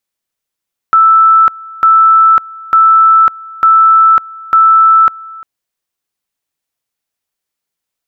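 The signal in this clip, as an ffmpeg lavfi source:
ffmpeg -f lavfi -i "aevalsrc='pow(10,(-3-23*gte(mod(t,0.9),0.55))/20)*sin(2*PI*1320*t)':duration=4.5:sample_rate=44100" out.wav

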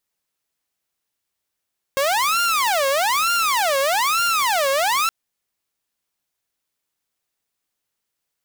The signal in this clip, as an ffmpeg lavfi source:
ffmpeg -f lavfi -i "aevalsrc='0.188*(2*mod((970.5*t-429.5/(2*PI*1.1)*sin(2*PI*1.1*t)),1)-1)':duration=3.12:sample_rate=44100" out.wav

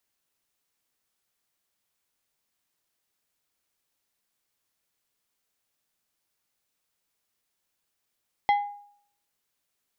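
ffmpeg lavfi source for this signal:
ffmpeg -f lavfi -i "aevalsrc='0.158*pow(10,-3*t/0.61)*sin(2*PI*818*t)+0.0562*pow(10,-3*t/0.321)*sin(2*PI*2045*t)+0.02*pow(10,-3*t/0.231)*sin(2*PI*3272*t)+0.00708*pow(10,-3*t/0.198)*sin(2*PI*4090*t)+0.00251*pow(10,-3*t/0.165)*sin(2*PI*5317*t)':duration=0.89:sample_rate=44100" out.wav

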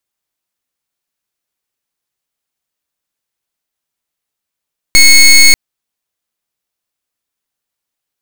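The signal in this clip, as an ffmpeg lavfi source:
ffmpeg -f lavfi -i "aevalsrc='0.668*(2*lt(mod(2190*t,1),0.18)-1)':duration=0.59:sample_rate=44100" out.wav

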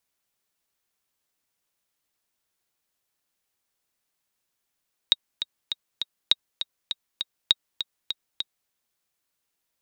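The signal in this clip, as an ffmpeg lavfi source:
ffmpeg -f lavfi -i "aevalsrc='pow(10,(-3.5-10.5*gte(mod(t,4*60/201),60/201))/20)*sin(2*PI*3780*mod(t,60/201))*exp(-6.91*mod(t,60/201)/0.03)':duration=3.58:sample_rate=44100" out.wav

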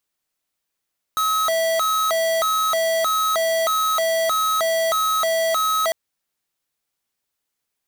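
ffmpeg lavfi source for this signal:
ffmpeg -f lavfi -i "aevalsrc='0.1*(2*lt(mod((967.5*t+312.5/1.6*(0.5-abs(mod(1.6*t,1)-0.5))),1),0.5)-1)':duration=4.75:sample_rate=44100" out.wav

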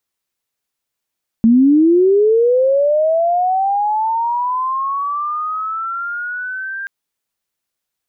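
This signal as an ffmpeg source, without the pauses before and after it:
ffmpeg -f lavfi -i "aevalsrc='pow(10,(-6.5-16*t/5.43)/20)*sin(2*PI*(220*t+1380*t*t/(2*5.43)))':duration=5.43:sample_rate=44100" out.wav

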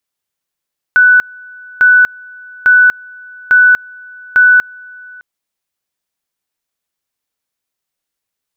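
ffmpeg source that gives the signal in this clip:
ffmpeg -f lavfi -i "aevalsrc='pow(10,(-3.5-27*gte(mod(t,0.85),0.24))/20)*sin(2*PI*1490*t)':duration=4.25:sample_rate=44100" out.wav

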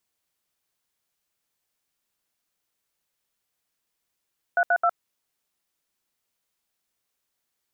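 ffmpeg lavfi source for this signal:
ffmpeg -f lavfi -i "aevalsrc='0.1*clip(min(mod(t,0.132),0.061-mod(t,0.132))/0.002,0,1)*(eq(floor(t/0.132),0)*(sin(2*PI*697*mod(t,0.132))+sin(2*PI*1477*mod(t,0.132)))+eq(floor(t/0.132),1)*(sin(2*PI*697*mod(t,0.132))+sin(2*PI*1477*mod(t,0.132)))+eq(floor(t/0.132),2)*(sin(2*PI*697*mod(t,0.132))+sin(2*PI*1336*mod(t,0.132))))':duration=0.396:sample_rate=44100" out.wav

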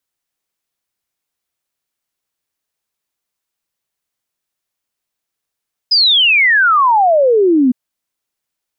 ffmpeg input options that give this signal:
ffmpeg -f lavfi -i "aevalsrc='0.422*clip(min(t,1.81-t)/0.01,0,1)*sin(2*PI*5100*1.81/log(240/5100)*(exp(log(240/5100)*t/1.81)-1))':duration=1.81:sample_rate=44100" out.wav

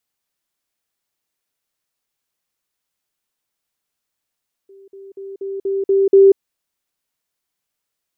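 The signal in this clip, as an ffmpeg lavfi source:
ffmpeg -f lavfi -i "aevalsrc='pow(10,(-41+6*floor(t/0.24))/20)*sin(2*PI*391*t)*clip(min(mod(t,0.24),0.19-mod(t,0.24))/0.005,0,1)':duration=1.68:sample_rate=44100" out.wav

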